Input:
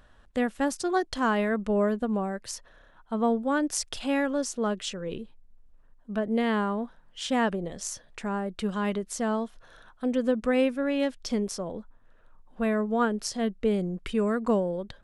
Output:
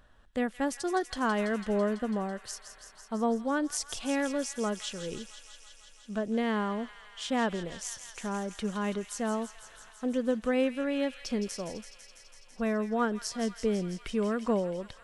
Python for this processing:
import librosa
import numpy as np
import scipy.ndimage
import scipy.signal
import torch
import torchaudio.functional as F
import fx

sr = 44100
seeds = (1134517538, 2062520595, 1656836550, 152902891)

y = fx.echo_wet_highpass(x, sr, ms=166, feedback_pct=80, hz=2000.0, wet_db=-9)
y = y * librosa.db_to_amplitude(-3.5)